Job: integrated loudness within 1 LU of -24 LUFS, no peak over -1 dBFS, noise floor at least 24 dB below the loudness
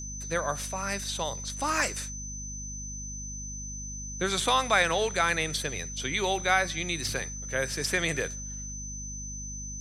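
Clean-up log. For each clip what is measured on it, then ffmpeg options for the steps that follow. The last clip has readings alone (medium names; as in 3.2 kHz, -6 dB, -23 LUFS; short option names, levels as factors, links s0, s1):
hum 50 Hz; highest harmonic 250 Hz; hum level -38 dBFS; steady tone 6.1 kHz; tone level -38 dBFS; loudness -29.5 LUFS; peak level -9.5 dBFS; loudness target -24.0 LUFS
-> -af "bandreject=f=50:t=h:w=6,bandreject=f=100:t=h:w=6,bandreject=f=150:t=h:w=6,bandreject=f=200:t=h:w=6,bandreject=f=250:t=h:w=6"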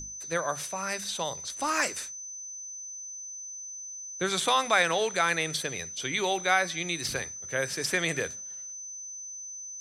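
hum not found; steady tone 6.1 kHz; tone level -38 dBFS
-> -af "bandreject=f=6100:w=30"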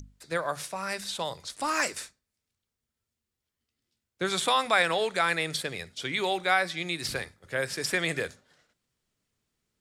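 steady tone not found; loudness -28.5 LUFS; peak level -9.5 dBFS; loudness target -24.0 LUFS
-> -af "volume=1.68"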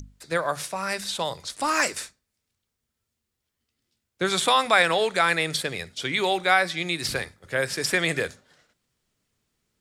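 loudness -24.0 LUFS; peak level -5.0 dBFS; noise floor -82 dBFS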